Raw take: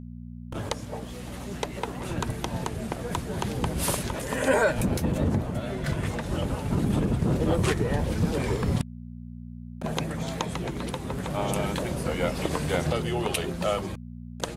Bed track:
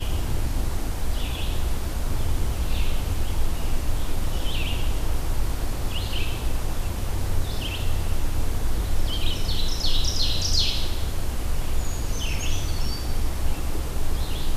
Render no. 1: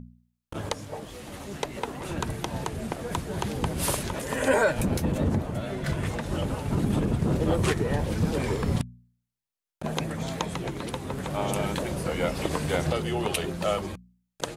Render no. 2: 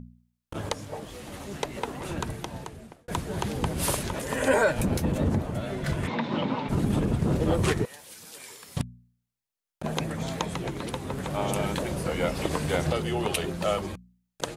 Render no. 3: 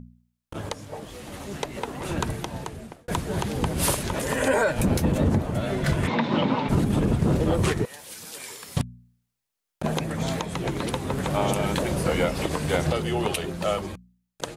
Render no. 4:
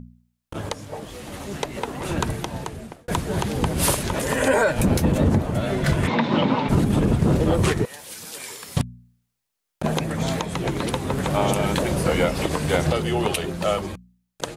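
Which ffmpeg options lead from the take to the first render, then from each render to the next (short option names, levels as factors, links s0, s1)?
-af "bandreject=f=60:t=h:w=4,bandreject=f=120:t=h:w=4,bandreject=f=180:t=h:w=4,bandreject=f=240:t=h:w=4"
-filter_complex "[0:a]asplit=3[s0][s1][s2];[s0]afade=t=out:st=6.06:d=0.02[s3];[s1]highpass=f=140:w=0.5412,highpass=f=140:w=1.3066,equalizer=f=240:t=q:w=4:g=9,equalizer=f=970:t=q:w=4:g=10,equalizer=f=2200:t=q:w=4:g=7,equalizer=f=3700:t=q:w=4:g=7,lowpass=f=4700:w=0.5412,lowpass=f=4700:w=1.3066,afade=t=in:st=6.06:d=0.02,afade=t=out:st=6.68:d=0.02[s4];[s2]afade=t=in:st=6.68:d=0.02[s5];[s3][s4][s5]amix=inputs=3:normalize=0,asettb=1/sr,asplit=3[s6][s7][s8];[s6]atrim=end=7.854[s9];[s7]atrim=start=7.85:end=8.77,asetpts=PTS-STARTPTS,afade=t=in:d=0.004:c=qsin,afade=t=out:st=0.916:d=0.004:c=qsin,aderivative[s10];[s8]atrim=start=8.766[s11];[s9][s10]acrossfade=d=0.004:c1=hsin:c2=qsin[s12];[s12][s11]acrossfade=d=0.004:c1=qsin:c2=hsin,asplit=2[s13][s14];[s13]atrim=end=3.08,asetpts=PTS-STARTPTS,afade=t=out:st=2.07:d=1.01[s15];[s14]atrim=start=3.08,asetpts=PTS-STARTPTS,afade=t=in:d=0.004:c=hsin[s16];[s15][s16]concat=n=2:v=0:a=1"
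-af "dynaudnorm=f=160:g=21:m=2,alimiter=limit=0.251:level=0:latency=1:release=321"
-af "volume=1.41"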